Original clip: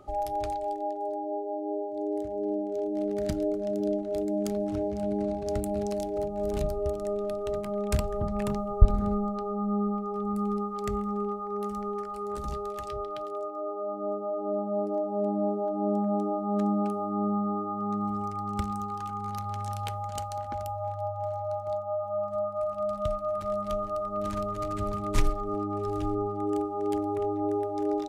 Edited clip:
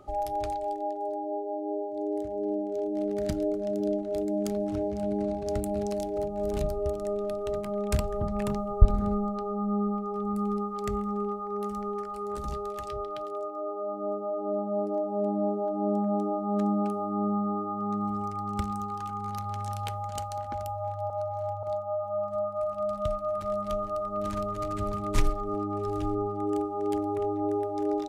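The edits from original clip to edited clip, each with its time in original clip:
21.1–21.63 reverse

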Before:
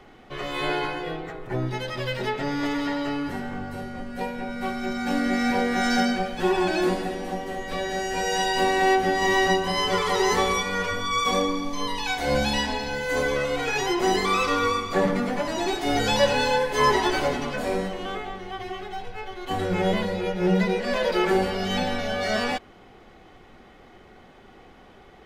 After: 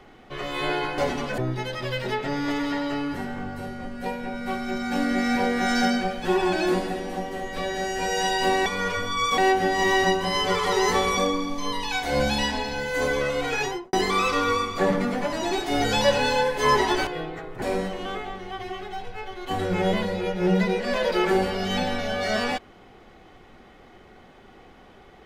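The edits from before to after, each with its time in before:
0.98–1.53 swap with 17.22–17.62
10.6–11.32 move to 8.81
13.74–14.08 studio fade out

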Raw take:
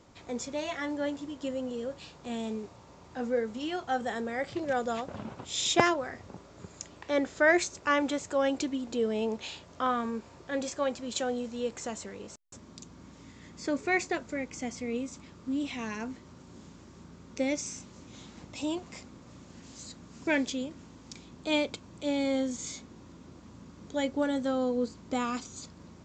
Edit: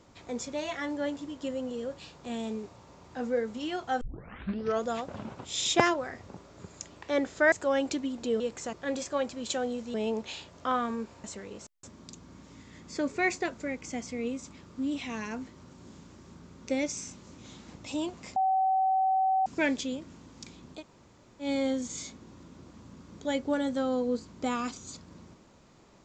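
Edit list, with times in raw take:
4.01 tape start 0.84 s
7.52–8.21 cut
9.09–10.39 swap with 11.6–11.93
19.05–20.15 bleep 762 Hz -22.5 dBFS
21.47–22.13 room tone, crossfade 0.10 s

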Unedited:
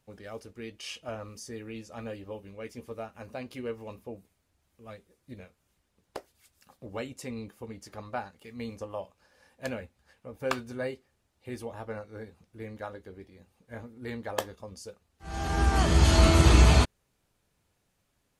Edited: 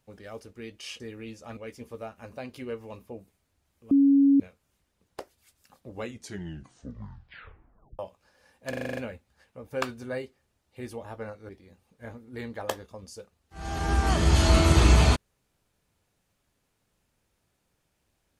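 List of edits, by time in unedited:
1–1.48 cut
2.05–2.54 cut
4.88–5.37 bleep 278 Hz -15.5 dBFS
6.91 tape stop 2.05 s
9.66 stutter 0.04 s, 8 plays
12.18–13.18 cut

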